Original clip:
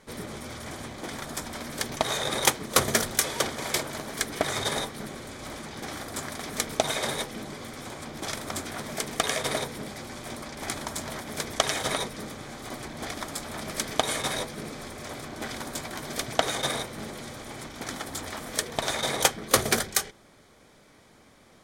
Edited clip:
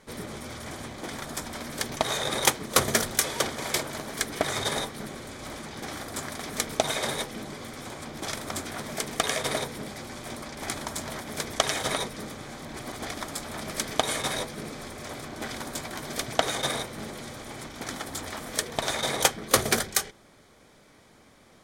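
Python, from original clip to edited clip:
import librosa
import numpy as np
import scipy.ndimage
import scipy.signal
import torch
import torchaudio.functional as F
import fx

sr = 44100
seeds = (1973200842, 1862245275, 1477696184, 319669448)

y = fx.edit(x, sr, fx.reverse_span(start_s=12.63, length_s=0.36), tone=tone)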